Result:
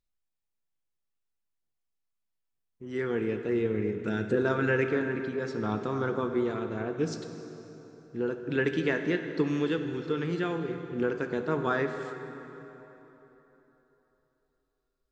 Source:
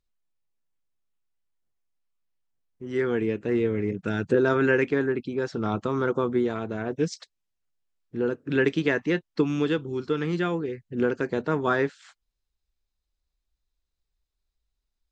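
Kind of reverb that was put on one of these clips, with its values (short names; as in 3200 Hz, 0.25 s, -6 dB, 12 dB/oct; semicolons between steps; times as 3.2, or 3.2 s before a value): plate-style reverb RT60 3.6 s, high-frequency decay 0.7×, DRR 6 dB; gain -4.5 dB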